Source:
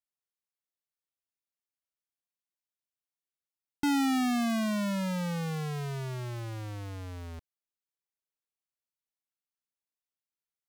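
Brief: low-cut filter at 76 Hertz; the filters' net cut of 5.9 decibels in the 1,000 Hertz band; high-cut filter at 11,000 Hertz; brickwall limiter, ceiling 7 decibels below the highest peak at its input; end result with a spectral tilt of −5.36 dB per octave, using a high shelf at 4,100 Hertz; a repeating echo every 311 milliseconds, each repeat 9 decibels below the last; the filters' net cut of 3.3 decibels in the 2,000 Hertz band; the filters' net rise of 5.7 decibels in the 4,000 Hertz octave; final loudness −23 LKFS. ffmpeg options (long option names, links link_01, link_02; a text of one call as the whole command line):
ffmpeg -i in.wav -af "highpass=76,lowpass=11000,equalizer=frequency=1000:width_type=o:gain=-8,equalizer=frequency=2000:width_type=o:gain=-4.5,equalizer=frequency=4000:width_type=o:gain=7,highshelf=frequency=4100:gain=3.5,alimiter=level_in=1dB:limit=-24dB:level=0:latency=1,volume=-1dB,aecho=1:1:311|622|933|1244:0.355|0.124|0.0435|0.0152,volume=11.5dB" out.wav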